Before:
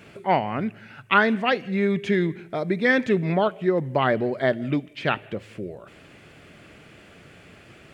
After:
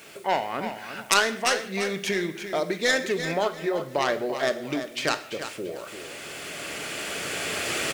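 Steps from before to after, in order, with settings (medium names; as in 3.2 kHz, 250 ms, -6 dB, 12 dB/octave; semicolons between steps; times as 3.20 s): tracing distortion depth 0.16 ms; recorder AGC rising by 8.8 dB/s; tone controls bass -15 dB, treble +12 dB; in parallel at -1 dB: compression, threshold -32 dBFS, peak gain reduction 20 dB; on the sum: bit crusher 8-bit; on a send: feedback delay 341 ms, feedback 24%, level -10 dB; on the sum: gated-style reverb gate 190 ms falling, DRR 10 dB; trim -5 dB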